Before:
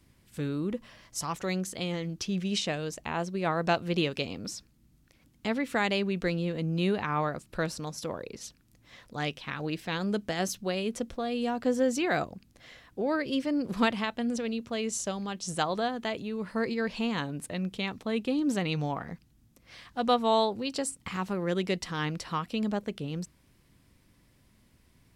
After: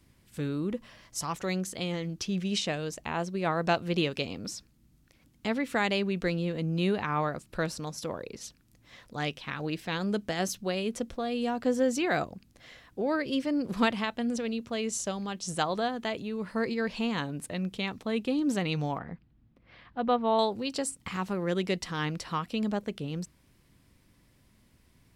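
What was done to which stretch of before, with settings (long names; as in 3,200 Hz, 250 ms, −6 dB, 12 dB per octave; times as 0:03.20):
0:18.98–0:20.39: high-frequency loss of the air 370 metres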